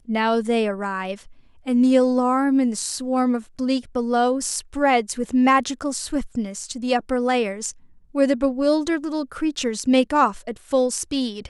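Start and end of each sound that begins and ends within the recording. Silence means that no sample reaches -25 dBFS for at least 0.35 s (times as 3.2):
1.67–7.7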